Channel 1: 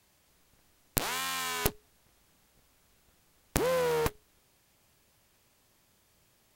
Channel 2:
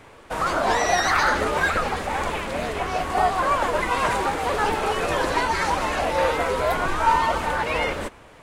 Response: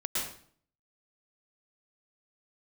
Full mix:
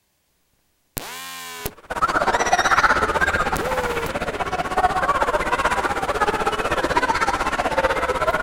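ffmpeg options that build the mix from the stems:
-filter_complex "[0:a]bandreject=f=1300:w=14,volume=1.06[s0];[1:a]equalizer=f=1400:w=5:g=7,tremolo=f=16:d=0.98,adelay=1600,volume=1.33,asplit=2[s1][s2];[s2]volume=0.266[s3];[2:a]atrim=start_sample=2205[s4];[s3][s4]afir=irnorm=-1:irlink=0[s5];[s0][s1][s5]amix=inputs=3:normalize=0"

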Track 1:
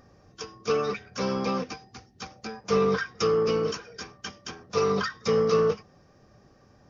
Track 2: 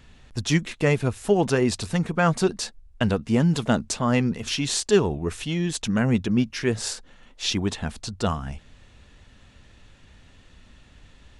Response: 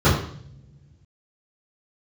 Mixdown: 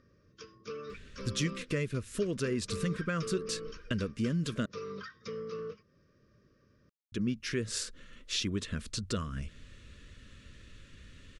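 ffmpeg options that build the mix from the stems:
-filter_complex "[0:a]acompressor=threshold=0.0158:ratio=2,lowpass=5000,volume=0.398[s0];[1:a]acompressor=threshold=0.0251:ratio=2.5,adelay=900,volume=0.891,asplit=3[s1][s2][s3];[s1]atrim=end=4.66,asetpts=PTS-STARTPTS,afade=t=out:st=4.656:d=0.004:c=hsin[s4];[s2]atrim=start=4.66:end=7.12,asetpts=PTS-STARTPTS,volume=0[s5];[s3]atrim=start=7.12,asetpts=PTS-STARTPTS,afade=t=in:d=0.004:c=hsin[s6];[s4][s5][s6]concat=n=3:v=0:a=1[s7];[s0][s7]amix=inputs=2:normalize=0,asuperstop=centerf=800:order=4:qfactor=1.4"

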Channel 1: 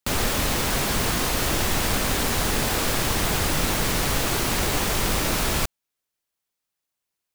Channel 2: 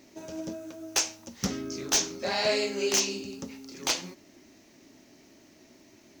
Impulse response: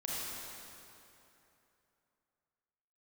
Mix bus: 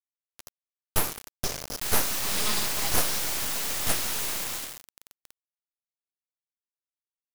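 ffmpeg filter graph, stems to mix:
-filter_complex "[0:a]lowshelf=f=210:g=-4,bandreject=f=50:t=h:w=6,bandreject=f=100:t=h:w=6,bandreject=f=150:t=h:w=6,bandreject=f=200:t=h:w=6,adelay=1750,volume=0.266,afade=t=out:st=4.24:d=0.61:silence=0.281838,asplit=2[s0][s1];[s1]volume=0.531[s2];[1:a]equalizer=f=125:t=o:w=0.33:g=-6,equalizer=f=200:t=o:w=0.33:g=8,equalizer=f=5000:t=o:w=0.33:g=6,volume=0.631,asplit=2[s3][s4];[s4]volume=0.299[s5];[2:a]atrim=start_sample=2205[s6];[s2][s5]amix=inputs=2:normalize=0[s7];[s7][s6]afir=irnorm=-1:irlink=0[s8];[s0][s3][s8]amix=inputs=3:normalize=0,bass=f=250:g=-6,treble=f=4000:g=5,aeval=exprs='abs(val(0))':c=same,acrusher=bits=4:mix=0:aa=0.000001"

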